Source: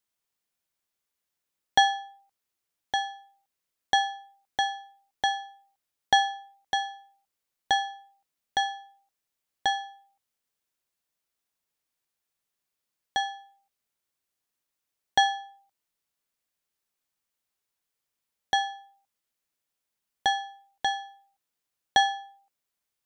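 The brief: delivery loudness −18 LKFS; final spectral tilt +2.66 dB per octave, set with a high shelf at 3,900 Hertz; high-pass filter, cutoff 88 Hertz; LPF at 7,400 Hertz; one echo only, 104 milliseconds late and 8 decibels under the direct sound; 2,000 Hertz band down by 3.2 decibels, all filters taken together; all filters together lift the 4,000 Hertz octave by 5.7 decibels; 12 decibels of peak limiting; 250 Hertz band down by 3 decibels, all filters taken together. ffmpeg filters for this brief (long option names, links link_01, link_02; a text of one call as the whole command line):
ffmpeg -i in.wav -af "highpass=88,lowpass=7400,equalizer=frequency=250:width_type=o:gain=-4,equalizer=frequency=2000:width_type=o:gain=-6,highshelf=frequency=3900:gain=7,equalizer=frequency=4000:width_type=o:gain=6,alimiter=limit=-18.5dB:level=0:latency=1,aecho=1:1:104:0.398,volume=12dB" out.wav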